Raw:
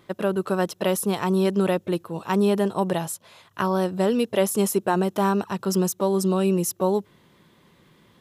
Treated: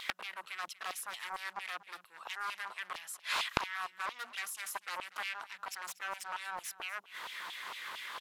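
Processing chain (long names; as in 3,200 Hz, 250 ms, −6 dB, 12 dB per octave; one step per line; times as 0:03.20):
low-shelf EQ 300 Hz +5.5 dB
mains-hum notches 60/120/180/240 Hz
sine wavefolder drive 14 dB, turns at −7 dBFS
gate with flip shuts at −11 dBFS, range −25 dB
auto-filter high-pass saw down 4.4 Hz 930–3,000 Hz
single-tap delay 239 ms −18.5 dB
highs frequency-modulated by the lows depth 0.99 ms
level −3 dB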